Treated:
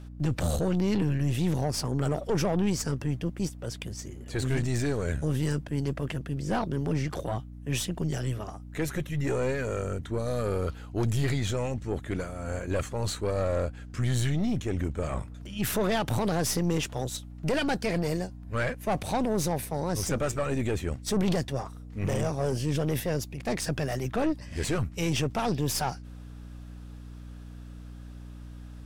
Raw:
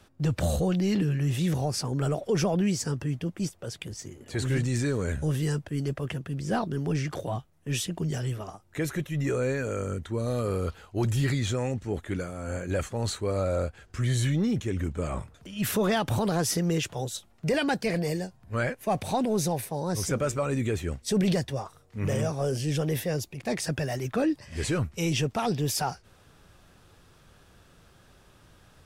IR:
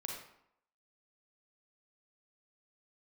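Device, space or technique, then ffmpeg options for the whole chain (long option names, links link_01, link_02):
valve amplifier with mains hum: -af "aeval=exprs='(tanh(15.8*val(0)+0.6)-tanh(0.6))/15.8':channel_layout=same,aeval=exprs='val(0)+0.00631*(sin(2*PI*60*n/s)+sin(2*PI*2*60*n/s)/2+sin(2*PI*3*60*n/s)/3+sin(2*PI*4*60*n/s)/4+sin(2*PI*5*60*n/s)/5)':channel_layout=same,volume=2.5dB"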